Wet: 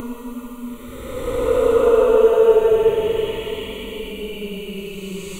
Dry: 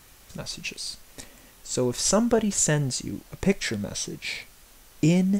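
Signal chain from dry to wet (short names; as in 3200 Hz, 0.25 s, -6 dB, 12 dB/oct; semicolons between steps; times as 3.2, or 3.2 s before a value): Paulstretch 20×, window 0.10 s, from 2.24; fixed phaser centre 1100 Hz, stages 8; gain +7.5 dB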